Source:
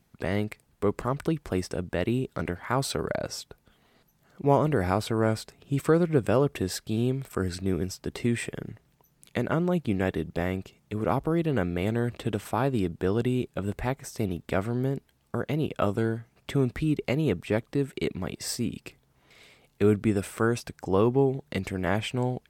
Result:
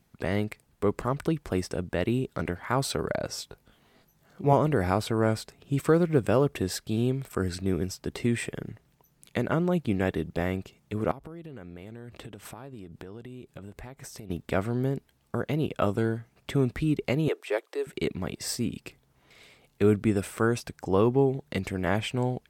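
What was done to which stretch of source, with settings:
3.36–4.53 s: doubling 20 ms -4 dB
5.84–6.55 s: short-mantissa float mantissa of 6-bit
11.11–14.30 s: compression 20:1, threshold -38 dBFS
17.28–17.87 s: steep high-pass 360 Hz 48 dB/octave

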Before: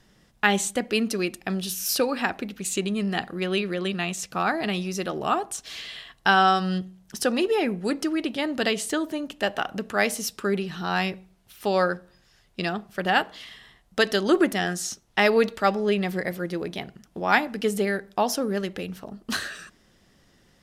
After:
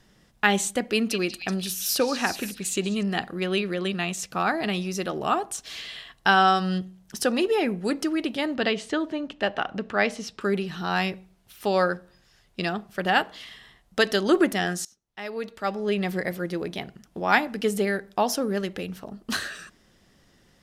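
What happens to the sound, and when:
0.87–3.03 s: repeats whose band climbs or falls 189 ms, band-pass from 3.4 kHz, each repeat 0.7 oct, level -4.5 dB
8.54–10.41 s: low-pass 4.1 kHz
14.85–16.07 s: fade in quadratic, from -23.5 dB

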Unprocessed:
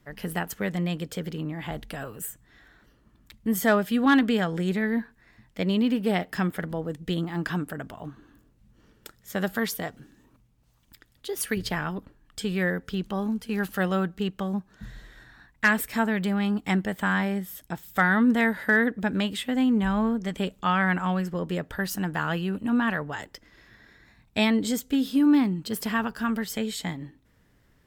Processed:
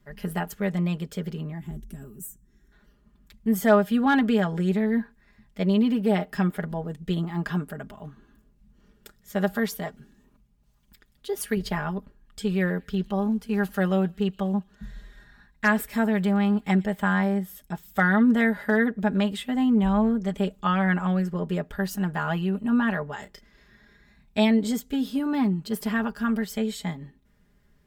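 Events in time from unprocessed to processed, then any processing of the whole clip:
1.59–2.72 s: time-frequency box 430–5300 Hz -15 dB
12.42–16.97 s: feedback echo behind a high-pass 117 ms, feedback 53%, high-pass 3.1 kHz, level -19 dB
23.19–24.38 s: doubling 32 ms -9.5 dB
whole clip: bass shelf 210 Hz +6.5 dB; comb 4.9 ms, depth 69%; dynamic bell 710 Hz, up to +6 dB, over -34 dBFS, Q 0.78; trim -5.5 dB

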